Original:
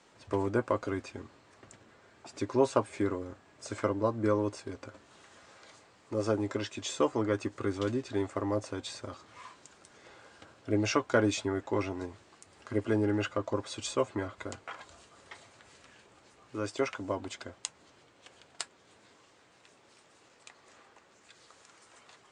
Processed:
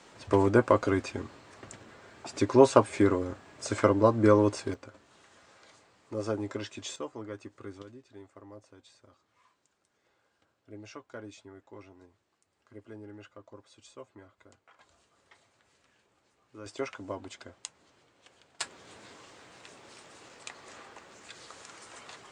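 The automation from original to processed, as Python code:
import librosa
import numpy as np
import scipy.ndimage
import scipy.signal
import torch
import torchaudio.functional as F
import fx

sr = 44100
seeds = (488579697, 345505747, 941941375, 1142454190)

y = fx.gain(x, sr, db=fx.steps((0.0, 7.0), (4.74, -2.5), (6.96, -11.0), (7.82, -18.0), (14.79, -11.0), (16.66, -4.0), (18.61, 9.0)))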